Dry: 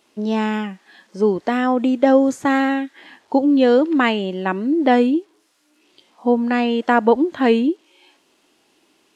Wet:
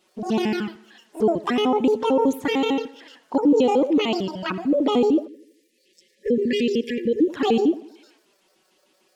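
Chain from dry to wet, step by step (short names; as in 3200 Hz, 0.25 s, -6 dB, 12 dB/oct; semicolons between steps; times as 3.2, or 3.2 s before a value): trilling pitch shifter +9 st, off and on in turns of 75 ms; limiter -9 dBFS, peak gain reduction 7.5 dB; envelope flanger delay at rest 5.5 ms, full sweep at -15.5 dBFS; on a send: tape echo 82 ms, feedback 52%, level -17 dB, low-pass 4300 Hz; on the sum: spectral delete 5.28–7.3, 560–1700 Hz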